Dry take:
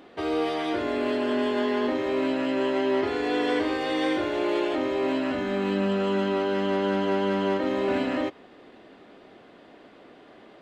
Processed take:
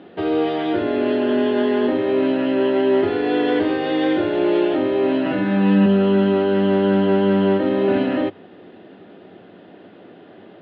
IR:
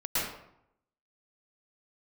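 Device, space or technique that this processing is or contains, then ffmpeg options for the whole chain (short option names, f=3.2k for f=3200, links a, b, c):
guitar cabinet: -filter_complex "[0:a]asettb=1/sr,asplit=3[a][b][c];[a]atrim=end=5.254[d];[b]atrim=start=5.25:end=5.86,asetpts=PTS-STARTPTS,afade=t=in:d=0.004:c=qsin,afade=t=out:st=0.606:d=0.004:c=qsin,aecho=1:1:6.2:0.79,atrim=end_sample=26901[e];[c]atrim=start=5.856[f];[d][e]acrossfade=d=0.004:c1=hsin:c2=qsin[g];[g][f]acrossfade=d=0.004:c1=qsin:c2=hsin,highpass=100,equalizer=f=100:t=q:w=4:g=10,equalizer=f=180:t=q:w=4:g=9,equalizer=f=360:t=q:w=4:g=4,equalizer=f=1.1k:t=q:w=4:g=-7,equalizer=f=2.2k:t=q:w=4:g=-6,lowpass=f=3.5k:w=0.5412,lowpass=f=3.5k:w=1.3066,volume=5.5dB"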